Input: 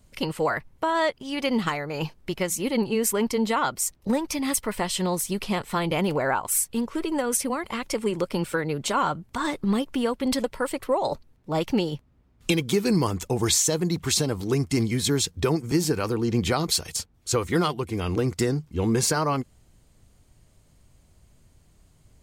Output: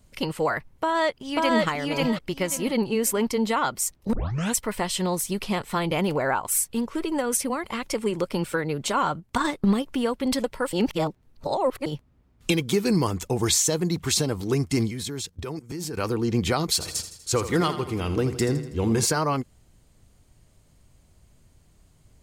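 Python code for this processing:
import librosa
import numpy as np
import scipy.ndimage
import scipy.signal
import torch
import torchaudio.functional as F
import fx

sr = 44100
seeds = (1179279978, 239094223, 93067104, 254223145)

y = fx.echo_throw(x, sr, start_s=0.7, length_s=0.94, ms=540, feedback_pct=25, wet_db=-0.5)
y = fx.transient(y, sr, attack_db=7, sustain_db=-7, at=(9.19, 9.83), fade=0.02)
y = fx.level_steps(y, sr, step_db=16, at=(14.89, 15.98))
y = fx.echo_feedback(y, sr, ms=81, feedback_pct=54, wet_db=-11.5, at=(16.8, 19.04), fade=0.02)
y = fx.edit(y, sr, fx.tape_start(start_s=4.13, length_s=0.45),
    fx.reverse_span(start_s=10.73, length_s=1.13), tone=tone)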